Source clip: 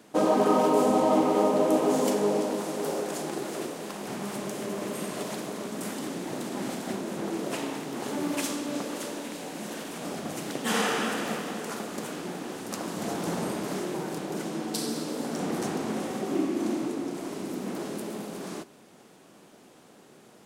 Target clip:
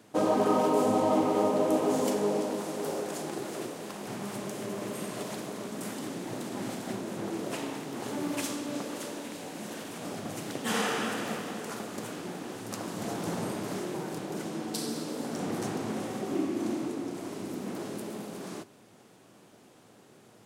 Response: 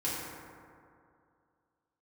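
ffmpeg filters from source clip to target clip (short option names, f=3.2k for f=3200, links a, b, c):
-af "equalizer=f=110:w=5:g=12.5,volume=-3dB"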